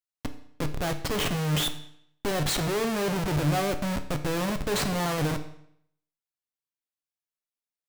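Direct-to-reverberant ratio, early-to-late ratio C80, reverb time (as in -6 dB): 7.5 dB, 14.5 dB, 0.70 s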